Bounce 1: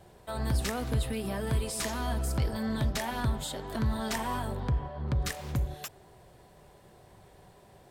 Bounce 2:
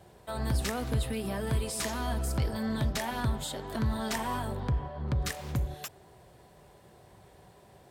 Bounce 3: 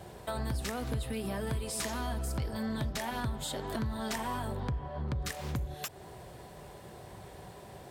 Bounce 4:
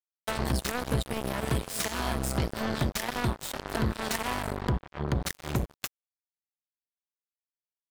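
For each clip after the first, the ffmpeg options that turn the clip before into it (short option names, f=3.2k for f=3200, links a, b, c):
-af "highpass=43"
-af "acompressor=threshold=-43dB:ratio=3,volume=7.5dB"
-af "acrusher=bits=4:mix=0:aa=0.5,volume=5.5dB"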